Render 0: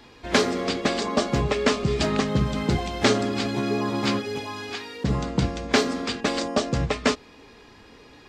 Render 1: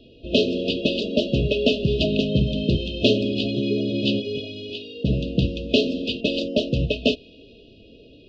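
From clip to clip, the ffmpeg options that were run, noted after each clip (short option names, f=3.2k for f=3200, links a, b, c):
-af "lowpass=f=3.4k:w=0.5412,lowpass=f=3.4k:w=1.3066,afftfilt=real='re*(1-between(b*sr/4096,680,2500))':imag='im*(1-between(b*sr/4096,680,2500))':win_size=4096:overlap=0.75,adynamicequalizer=threshold=0.00708:dfrequency=1700:dqfactor=0.7:tfrequency=1700:tqfactor=0.7:attack=5:release=100:ratio=0.375:range=3.5:mode=boostabove:tftype=highshelf,volume=2.5dB"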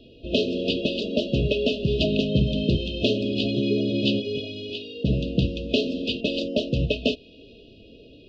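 -af "alimiter=limit=-10.5dB:level=0:latency=1:release=390"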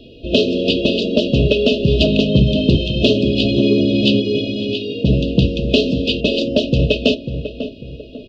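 -filter_complex "[0:a]acontrast=24,asplit=2[a][b];[b]adelay=546,lowpass=f=1.3k:p=1,volume=-9dB,asplit=2[c][d];[d]adelay=546,lowpass=f=1.3k:p=1,volume=0.36,asplit=2[e][f];[f]adelay=546,lowpass=f=1.3k:p=1,volume=0.36,asplit=2[g][h];[h]adelay=546,lowpass=f=1.3k:p=1,volume=0.36[i];[a][c][e][g][i]amix=inputs=5:normalize=0,volume=3.5dB"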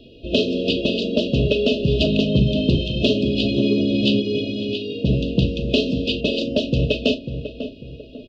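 -filter_complex "[0:a]asplit=2[a][b];[b]adelay=39,volume=-13dB[c];[a][c]amix=inputs=2:normalize=0,volume=-4.5dB"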